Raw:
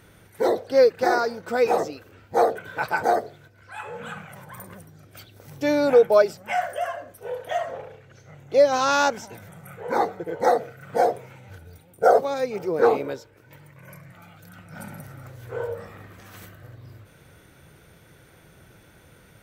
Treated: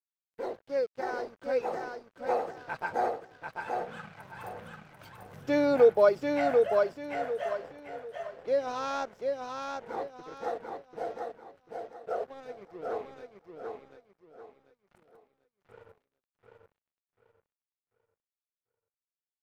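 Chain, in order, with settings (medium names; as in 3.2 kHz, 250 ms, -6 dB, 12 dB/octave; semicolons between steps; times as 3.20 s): Doppler pass-by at 5.12 s, 12 m/s, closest 18 m; in parallel at -2 dB: compression 6:1, threshold -52 dBFS, peak gain reduction 35.5 dB; on the sum: crossover distortion -46 dBFS; low-pass 3.1 kHz 6 dB/octave; feedback delay 741 ms, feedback 31%, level -4 dB; trim -3.5 dB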